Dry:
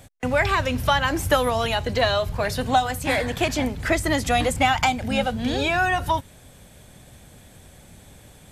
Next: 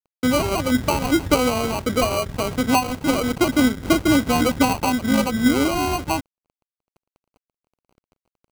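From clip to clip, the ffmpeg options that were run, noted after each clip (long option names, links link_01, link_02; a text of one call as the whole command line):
ffmpeg -i in.wav -af "equalizer=frequency=280:width=0.85:gain=14,acrusher=samples=25:mix=1:aa=0.000001,aeval=exprs='sgn(val(0))*max(abs(val(0))-0.02,0)':channel_layout=same,volume=-3.5dB" out.wav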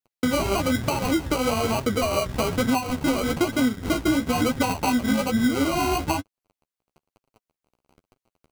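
ffmpeg -i in.wav -filter_complex "[0:a]flanger=delay=7.1:depth=9.6:regen=15:speed=1.1:shape=triangular,asplit=2[link_01][link_02];[link_02]acompressor=threshold=-27dB:ratio=6,volume=3dB[link_03];[link_01][link_03]amix=inputs=2:normalize=0,alimiter=limit=-11.5dB:level=0:latency=1:release=244,volume=-1.5dB" out.wav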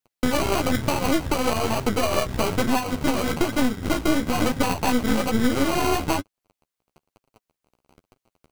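ffmpeg -i in.wav -af "aeval=exprs='clip(val(0),-1,0.0158)':channel_layout=same,volume=4dB" out.wav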